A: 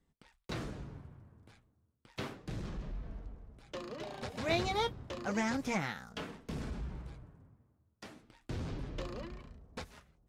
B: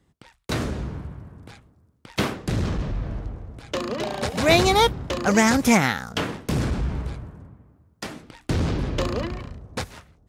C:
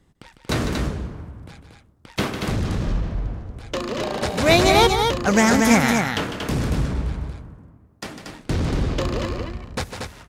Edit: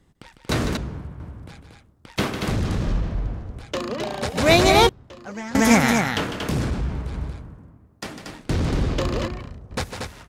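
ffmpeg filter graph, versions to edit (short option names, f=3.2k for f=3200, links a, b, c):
-filter_complex "[1:a]asplit=4[a][b][c][d];[2:a]asplit=6[e][f][g][h][i][j];[e]atrim=end=0.772[k];[a]atrim=start=0.768:end=1.202[l];[f]atrim=start=1.198:end=3.642[m];[b]atrim=start=3.638:end=4.362[n];[g]atrim=start=4.358:end=4.892[o];[0:a]atrim=start=4.888:end=5.552[p];[h]atrim=start=5.548:end=6.492[q];[c]atrim=start=6.488:end=7.132[r];[i]atrim=start=7.128:end=9.282[s];[d]atrim=start=9.278:end=9.712[t];[j]atrim=start=9.708[u];[k][l]acrossfade=d=0.004:c1=hsin:c2=hsin[v];[v][m]acrossfade=d=0.004:c1=hsin:c2=hsin[w];[w][n]acrossfade=d=0.004:c1=hsin:c2=hsin[x];[x][o]acrossfade=d=0.004:c1=hsin:c2=hsin[y];[y][p]acrossfade=d=0.004:c1=hsin:c2=hsin[z];[z][q]acrossfade=d=0.004:c1=hsin:c2=hsin[aa];[aa][r]acrossfade=d=0.004:c1=hsin:c2=hsin[ab];[ab][s]acrossfade=d=0.004:c1=hsin:c2=hsin[ac];[ac][t]acrossfade=d=0.004:c1=hsin:c2=hsin[ad];[ad][u]acrossfade=d=0.004:c1=hsin:c2=hsin"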